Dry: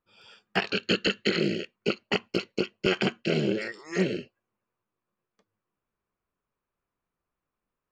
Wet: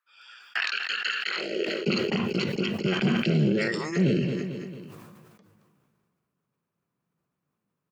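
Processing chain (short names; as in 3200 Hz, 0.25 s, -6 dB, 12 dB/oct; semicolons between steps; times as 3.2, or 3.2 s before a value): low shelf 260 Hz +7.5 dB; limiter -19 dBFS, peak gain reduction 10 dB; high-pass sweep 1500 Hz -> 150 Hz, 1.23–1.91; feedback echo 0.223 s, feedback 42%, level -23.5 dB; sustainer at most 27 dB/s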